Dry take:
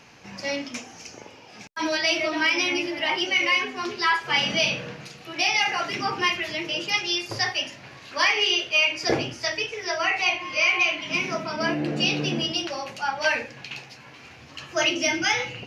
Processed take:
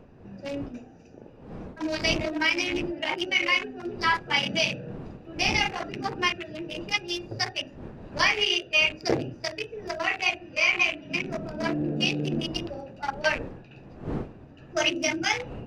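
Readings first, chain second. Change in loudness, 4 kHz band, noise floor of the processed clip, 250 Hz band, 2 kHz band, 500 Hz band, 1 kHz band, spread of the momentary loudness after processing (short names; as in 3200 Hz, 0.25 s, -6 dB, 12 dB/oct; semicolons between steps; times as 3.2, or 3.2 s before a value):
-3.0 dB, -3.5 dB, -49 dBFS, -0.5 dB, -3.0 dB, -2.0 dB, -3.5 dB, 17 LU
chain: Wiener smoothing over 41 samples; wind noise 350 Hz -42 dBFS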